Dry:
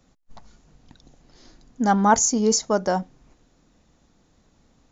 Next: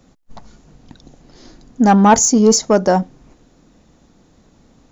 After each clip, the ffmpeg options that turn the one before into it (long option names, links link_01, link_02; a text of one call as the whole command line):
ffmpeg -i in.wav -af "equalizer=frequency=280:width_type=o:width=2.7:gain=4.5,acontrast=68" out.wav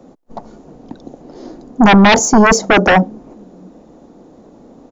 ffmpeg -i in.wav -filter_complex "[0:a]acrossover=split=230|880[link_01][link_02][link_03];[link_01]aecho=1:1:662:0.178[link_04];[link_02]aeval=exprs='0.708*sin(PI/2*5.01*val(0)/0.708)':channel_layout=same[link_05];[link_04][link_05][link_03]amix=inputs=3:normalize=0,volume=-2.5dB" out.wav